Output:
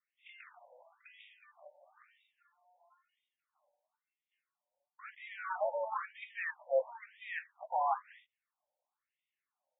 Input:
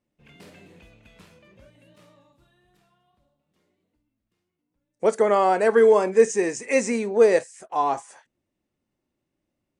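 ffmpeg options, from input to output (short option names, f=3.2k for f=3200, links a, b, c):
-filter_complex "[0:a]adynamicequalizer=threshold=0.0112:dfrequency=120:dqfactor=1.3:tfrequency=120:tqfactor=1.3:attack=5:release=100:ratio=0.375:range=2.5:mode=cutabove:tftype=bell,areverse,acompressor=threshold=-26dB:ratio=12,areverse,asplit=3[a][b][c];[b]asetrate=55563,aresample=44100,atempo=0.793701,volume=-9dB[d];[c]asetrate=88200,aresample=44100,atempo=0.5,volume=-17dB[e];[a][d][e]amix=inputs=3:normalize=0,asplit=2[f][g];[g]aeval=exprs='val(0)*gte(abs(val(0)),0.00891)':c=same,volume=-7.5dB[h];[f][h]amix=inputs=2:normalize=0,acrossover=split=490[i][j];[j]acompressor=threshold=-29dB:ratio=4[k];[i][k]amix=inputs=2:normalize=0,afftfilt=real='re*between(b*sr/1024,680*pow(2700/680,0.5+0.5*sin(2*PI*1*pts/sr))/1.41,680*pow(2700/680,0.5+0.5*sin(2*PI*1*pts/sr))*1.41)':imag='im*between(b*sr/1024,680*pow(2700/680,0.5+0.5*sin(2*PI*1*pts/sr))/1.41,680*pow(2700/680,0.5+0.5*sin(2*PI*1*pts/sr))*1.41)':win_size=1024:overlap=0.75"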